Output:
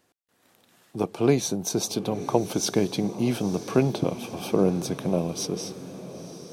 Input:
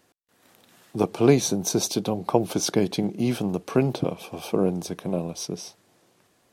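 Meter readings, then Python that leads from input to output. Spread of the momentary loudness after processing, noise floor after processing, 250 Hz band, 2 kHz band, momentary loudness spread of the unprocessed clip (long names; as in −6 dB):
14 LU, −68 dBFS, −1.0 dB, −1.0 dB, 12 LU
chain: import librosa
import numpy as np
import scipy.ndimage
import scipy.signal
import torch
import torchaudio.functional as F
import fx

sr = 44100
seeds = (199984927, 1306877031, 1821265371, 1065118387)

y = fx.echo_diffused(x, sr, ms=953, feedback_pct=44, wet_db=-15.0)
y = fx.rider(y, sr, range_db=4, speed_s=2.0)
y = y * librosa.db_to_amplitude(-1.0)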